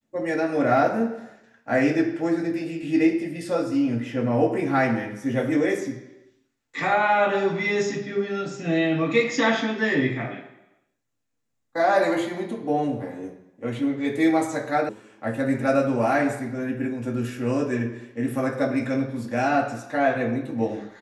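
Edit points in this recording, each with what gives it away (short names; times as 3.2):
14.89 sound cut off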